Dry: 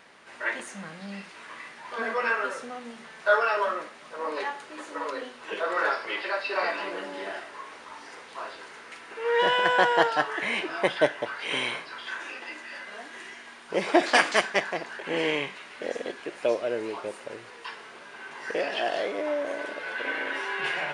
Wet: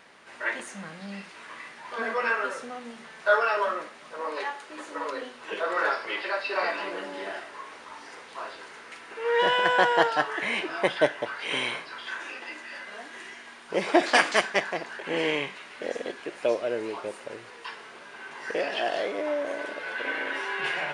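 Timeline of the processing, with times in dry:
0:04.21–0:04.70: parametric band 110 Hz −8.5 dB 2.5 octaves

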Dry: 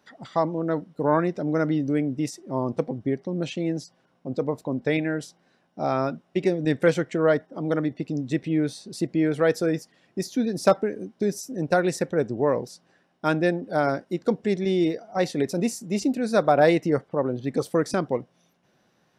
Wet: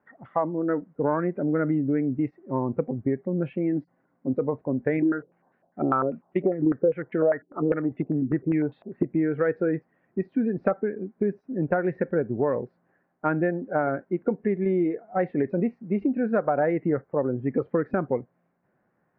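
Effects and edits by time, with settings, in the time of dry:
0:03.72–0:04.35: hollow resonant body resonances 280/2,000 Hz, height 7 dB
0:05.02–0:09.03: low-pass on a step sequencer 10 Hz 340–3,600 Hz
whole clip: noise reduction from a noise print of the clip's start 8 dB; Butterworth low-pass 2,000 Hz 36 dB per octave; downward compressor 6 to 1, threshold −23 dBFS; level +3 dB

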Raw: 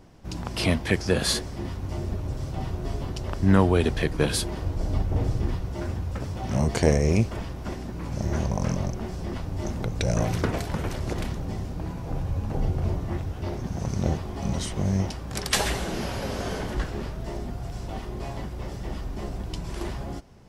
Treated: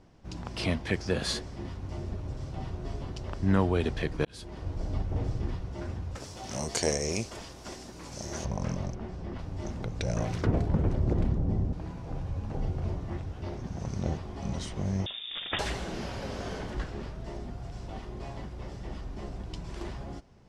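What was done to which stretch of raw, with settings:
0:04.25–0:04.71: fade in
0:06.15–0:08.45: bass and treble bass −9 dB, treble +15 dB
0:08.95–0:09.39: high-shelf EQ 4,300 Hz −10.5 dB
0:10.46–0:11.73: tilt shelving filter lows +10 dB
0:15.06–0:15.59: voice inversion scrambler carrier 3,600 Hz
whole clip: low-pass filter 7,300 Hz 12 dB per octave; level −6 dB

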